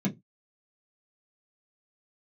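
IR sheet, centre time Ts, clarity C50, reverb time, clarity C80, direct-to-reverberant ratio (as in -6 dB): 12 ms, 16.5 dB, not exponential, 24.0 dB, -2.5 dB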